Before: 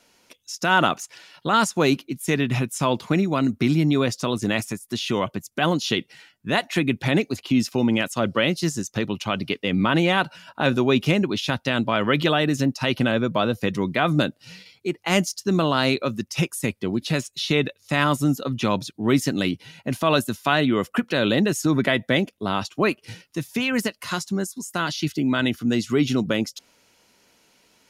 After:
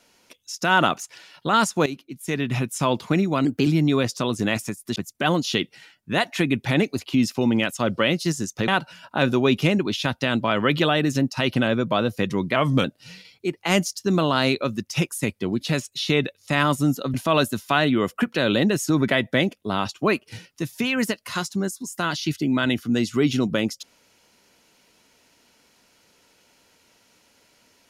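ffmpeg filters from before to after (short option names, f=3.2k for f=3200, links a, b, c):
-filter_complex "[0:a]asplit=9[a][b][c][d][e][f][g][h][i];[a]atrim=end=1.86,asetpts=PTS-STARTPTS,afade=t=out:st=1.856:d=0.004:c=hsin:silence=0.188365[j];[b]atrim=start=1.86:end=3.454,asetpts=PTS-STARTPTS,afade=t=in:d=0.85:silence=0.188365[k];[c]atrim=start=3.45:end=3.7,asetpts=PTS-STARTPTS,asetrate=50274,aresample=44100,atrim=end_sample=9671,asetpts=PTS-STARTPTS[l];[d]atrim=start=3.696:end=4.992[m];[e]atrim=start=5.328:end=9.052[n];[f]atrim=start=10.118:end=14.004[o];[g]atrim=start=14:end=14.25,asetpts=PTS-STARTPTS,asetrate=39249,aresample=44100[p];[h]atrim=start=14.246:end=18.552[q];[i]atrim=start=19.898[r];[j][k]concat=n=2:v=0:a=1[s];[s][l]acrossfade=d=0.004:c1=hsin:c2=hsin[t];[t][m]acrossfade=d=0.004:c1=hsin:c2=hsin[u];[u][n]acrossfade=d=0.004:c1=hsin:c2=hsin[v];[v][o]acrossfade=d=0.004:c1=hsin:c2=hsin[w];[w][p]acrossfade=d=0.004:c1=hsin:c2=hsin[x];[x][q]acrossfade=d=0.004:c1=hsin:c2=hsin[y];[y][r]acrossfade=d=0.004:c1=hsin:c2=hsin"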